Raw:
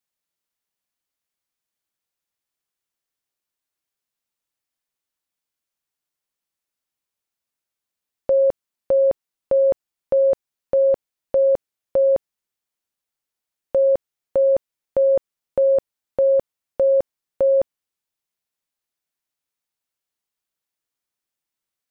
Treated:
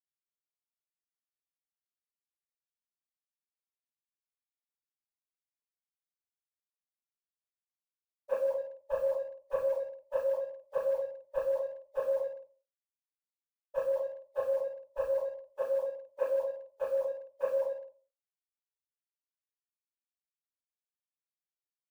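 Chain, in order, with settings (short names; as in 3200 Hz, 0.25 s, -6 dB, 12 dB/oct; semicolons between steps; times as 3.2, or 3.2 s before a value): bin magnitudes rounded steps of 15 dB; band shelf 710 Hz +14.5 dB 1.3 oct; limiter -7.5 dBFS, peak gain reduction 10 dB; compressor 4:1, threshold -22 dBFS, peak gain reduction 10.5 dB; wrapped overs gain 16 dB; vocal tract filter a; requantised 12-bit, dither none; shoebox room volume 110 m³, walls mixed, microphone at 4.1 m; expander -45 dBFS; Butterworth band-stop 730 Hz, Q 3; speakerphone echo 0.16 s, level -14 dB; three-band expander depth 100%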